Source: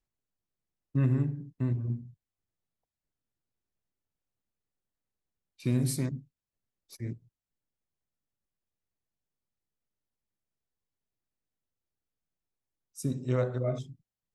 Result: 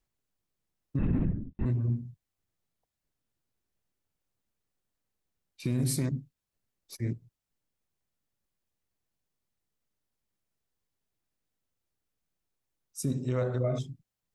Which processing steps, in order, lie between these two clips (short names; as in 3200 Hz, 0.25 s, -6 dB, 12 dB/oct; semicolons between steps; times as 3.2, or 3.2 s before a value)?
limiter -25 dBFS, peak gain reduction 9 dB; 0.99–1.66 LPC vocoder at 8 kHz whisper; gain +4.5 dB